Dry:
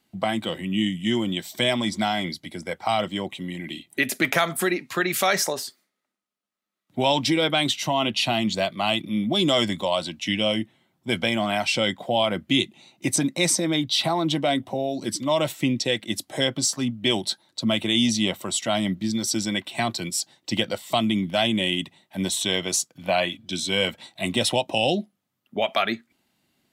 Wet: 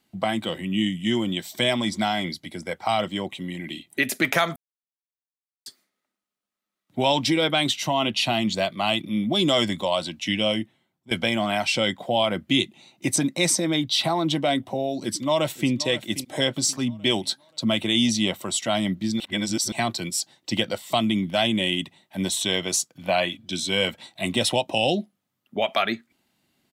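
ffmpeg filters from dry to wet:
-filter_complex "[0:a]asplit=2[a][b];[b]afade=t=in:st=15.02:d=0.01,afade=t=out:st=15.71:d=0.01,aecho=0:1:530|1060|1590|2120:0.188365|0.075346|0.0301384|0.0120554[c];[a][c]amix=inputs=2:normalize=0,asplit=6[d][e][f][g][h][i];[d]atrim=end=4.56,asetpts=PTS-STARTPTS,afade=t=out:st=4.556:d=0.004:c=hsin[j];[e]atrim=start=4.56:end=5.66,asetpts=PTS-STARTPTS,volume=0[k];[f]atrim=start=5.66:end=11.11,asetpts=PTS-STARTPTS,afade=t=in:d=0.004:c=hsin,afade=t=out:st=4.86:d=0.59:silence=0.133352[l];[g]atrim=start=11.11:end=19.202,asetpts=PTS-STARTPTS,afade=t=in:d=0.004:c=hsin:silence=0.133352[m];[h]atrim=start=19.198:end=19.722,asetpts=PTS-STARTPTS,areverse[n];[i]atrim=start=19.718[o];[j][k][l][m]concat=n=4:v=0:a=1[p];[p][n]acrossfade=d=0.004:c1=hsin:c2=hsin[q];[q][o]acrossfade=d=0.004:c1=hsin:c2=hsin"

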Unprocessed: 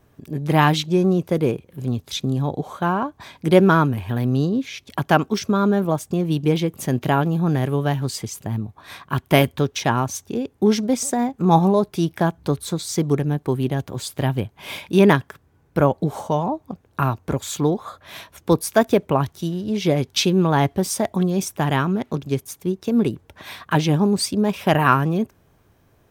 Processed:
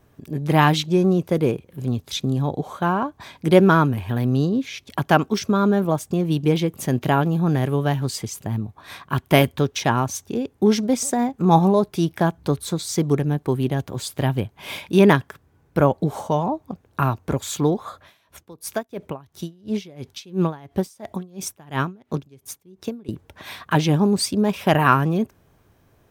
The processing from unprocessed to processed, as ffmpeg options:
-filter_complex "[0:a]asettb=1/sr,asplit=3[a][b][c];[a]atrim=end=18.024[d];[b]atrim=start=18.02:end=23.09,asetpts=PTS-STARTPTS,afade=t=in:d=0.004:c=qsin,afade=t=out:st=5.066:d=0.004:c=qsin,aeval=exprs='val(0)*pow(10,-27*(0.5-0.5*cos(2*PI*2.9*n/s))/20)':c=same[e];[c]atrim=start=23.086[f];[d][e]acrossfade=d=0.004:c1=hsin:c2=qsin[g];[g][f]acrossfade=d=0.004:c1=qsin:c2=hsin"

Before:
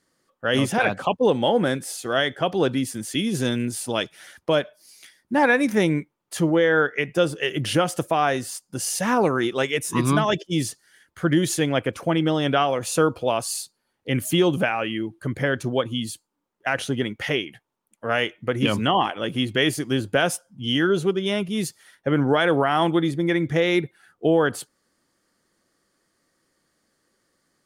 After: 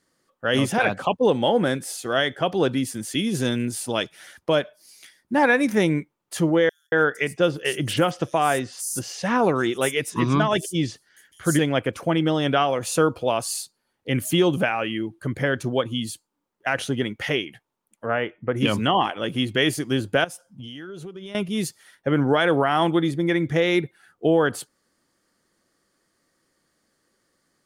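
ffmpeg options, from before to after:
-filter_complex "[0:a]asettb=1/sr,asplit=3[a][b][c];[a]atrim=end=6.694[d];[b]atrim=start=6.69:end=11.59,asetpts=PTS-STARTPTS,afade=t=in:d=0.004:c=qsin,afade=t=out:st=4.896:d=0.004:c=qsin,acrossover=split=5900[e][f];[e]adelay=230[g];[g][f]amix=inputs=2:normalize=0,atrim=end_sample=216090[h];[c]atrim=start=11.586[i];[d][h]acrossfade=d=0.004:c1=hsin:c2=qsin[j];[j][i]acrossfade=d=0.004:c1=qsin:c2=hsin,asplit=3[k][l][m];[k]afade=t=out:st=18.05:d=0.02[n];[l]lowpass=1.7k,afade=t=in:st=18.05:d=0.02,afade=t=out:st=18.55:d=0.02[o];[m]afade=t=in:st=18.55:d=0.02[p];[n][o][p]amix=inputs=3:normalize=0,asettb=1/sr,asplit=3[q][r][s];[q]atrim=end=20.244[t];[r]atrim=start=20.24:end=21.35,asetpts=PTS-STARTPTS,afade=t=in:d=0.004:c=qsin,afade=t=out:st=1.106:d=0.004:c=qsin,acompressor=threshold=-33dB:ratio=16:attack=3.2:release=140:knee=1:detection=peak[u];[s]atrim=start=21.346[v];[t][u]acrossfade=d=0.004:c1=hsin:c2=qsin[w];[w][v]acrossfade=d=0.004:c1=qsin:c2=hsin"

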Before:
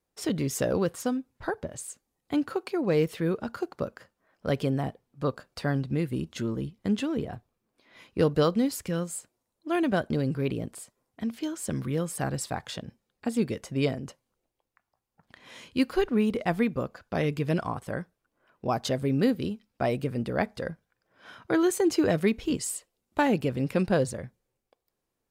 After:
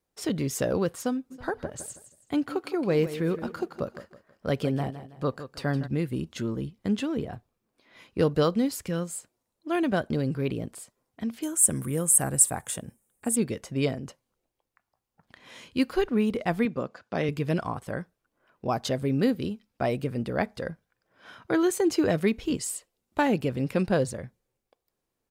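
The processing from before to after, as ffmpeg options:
-filter_complex "[0:a]asplit=3[a][b][c];[a]afade=t=out:st=1.3:d=0.02[d];[b]aecho=1:1:162|324|486:0.237|0.0806|0.0274,afade=t=in:st=1.3:d=0.02,afade=t=out:st=5.86:d=0.02[e];[c]afade=t=in:st=5.86:d=0.02[f];[d][e][f]amix=inputs=3:normalize=0,asettb=1/sr,asplit=3[g][h][i];[g]atrim=end=11.424[j];[h]atrim=start=11.42:end=13.36,asetpts=PTS-STARTPTS,afade=t=in:d=0.004:c=qsin,afade=t=out:st=1.936:d=0.004:c=qsin,highshelf=f=6.5k:t=q:w=3:g=13[k];[i]atrim=start=13.356[l];[j][k]acrossfade=d=0.004:c1=hsin:c2=qsin[m];[m][l]acrossfade=d=0.004:c1=qsin:c2=hsin,asettb=1/sr,asplit=3[n][o][p];[n]atrim=end=16.654[q];[o]atrim=start=16.65:end=17.29,asetpts=PTS-STARTPTS,afade=t=in:d=0.004:c=qsin,afade=t=out:st=0.636:d=0.004:c=qsin,highpass=140,lowpass=7.8k[r];[p]atrim=start=17.286[s];[q][r]acrossfade=d=0.004:c1=hsin:c2=qsin[t];[t][s]acrossfade=d=0.004:c1=qsin:c2=hsin"

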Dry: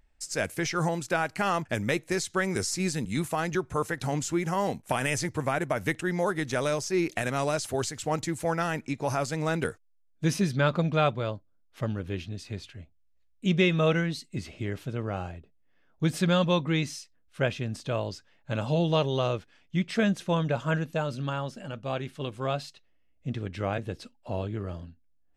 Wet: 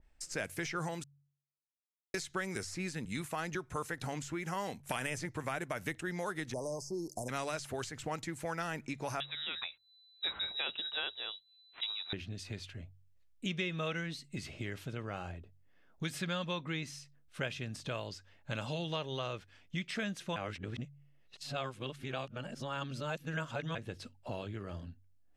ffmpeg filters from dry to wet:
-filter_complex "[0:a]asplit=3[a][b][c];[a]afade=t=out:st=6.52:d=0.02[d];[b]asuperstop=centerf=2200:order=20:qfactor=0.6,afade=t=in:st=6.52:d=0.02,afade=t=out:st=7.28:d=0.02[e];[c]afade=t=in:st=7.28:d=0.02[f];[d][e][f]amix=inputs=3:normalize=0,asettb=1/sr,asplit=3[g][h][i];[g]atrim=end=9.204[j];[h]atrim=start=9.2:end=12.13,asetpts=PTS-STARTPTS,afade=t=in:d=0.004:c=qsin,afade=t=out:st=2.926:d=0.004:c=qsin,lowpass=f=3.4k:t=q:w=0.5098,lowpass=f=3.4k:t=q:w=0.6013,lowpass=f=3.4k:t=q:w=0.9,lowpass=f=3.4k:t=q:w=2.563,afreqshift=-4000[k];[i]atrim=start=12.126[l];[j][k]acrossfade=d=0.004:c1=hsin:c2=qsin[m];[m][l]acrossfade=d=0.004:c1=qsin:c2=hsin,asplit=5[n][o][p][q][r];[n]atrim=end=1.04,asetpts=PTS-STARTPTS,afade=t=out:st=1.036:d=0.004:c=hsin[s];[o]atrim=start=1.04:end=2.14,asetpts=PTS-STARTPTS,volume=0[t];[p]atrim=start=2.14:end=20.362,asetpts=PTS-STARTPTS,afade=t=in:d=0.004:c=hsin[u];[q]atrim=start=20.358:end=23.752,asetpts=PTS-STARTPTS,areverse[v];[r]atrim=start=23.748[w];[s][t][u]concat=n=3:v=0:a=1[x];[x][v]acrossfade=d=0.004:c1=hsin:c2=hsin[y];[y][w]acrossfade=d=0.004:c1=hsin:c2=hsin,bandreject=f=47.19:t=h:w=4,bandreject=f=94.38:t=h:w=4,bandreject=f=141.57:t=h:w=4,acrossover=split=1400|2900[z][aa][ab];[z]acompressor=threshold=-39dB:ratio=4[ac];[aa]acompressor=threshold=-40dB:ratio=4[ad];[ab]acompressor=threshold=-44dB:ratio=4[ae];[ac][ad][ae]amix=inputs=3:normalize=0,adynamicequalizer=threshold=0.00282:dfrequency=2000:dqfactor=0.7:tfrequency=2000:tqfactor=0.7:attack=5:release=100:ratio=0.375:range=2:mode=cutabove:tftype=highshelf"

